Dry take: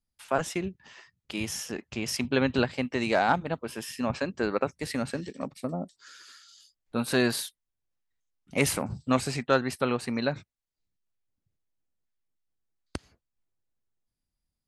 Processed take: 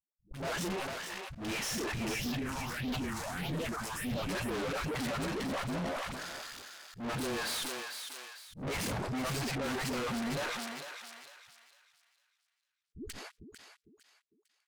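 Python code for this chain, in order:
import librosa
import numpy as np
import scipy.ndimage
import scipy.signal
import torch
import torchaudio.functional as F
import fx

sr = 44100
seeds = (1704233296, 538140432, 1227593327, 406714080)

y = fx.cvsd(x, sr, bps=64000)
y = fx.leveller(y, sr, passes=5)
y = fx.high_shelf(y, sr, hz=4900.0, db=-10.5)
y = fx.dispersion(y, sr, late='highs', ms=148.0, hz=330.0)
y = fx.tube_stage(y, sr, drive_db=31.0, bias=0.45)
y = fx.phaser_stages(y, sr, stages=4, low_hz=370.0, high_hz=1700.0, hz=1.6, feedback_pct=40, at=(2.14, 4.29))
y = fx.spec_repair(y, sr, seeds[0], start_s=12.82, length_s=0.26, low_hz=440.0, high_hz=6700.0, source='before')
y = fx.echo_thinned(y, sr, ms=452, feedback_pct=29, hz=1000.0, wet_db=-6.5)
y = fx.auto_swell(y, sr, attack_ms=137.0)
y = fx.sustainer(y, sr, db_per_s=23.0)
y = F.gain(torch.from_numpy(y), -3.0).numpy()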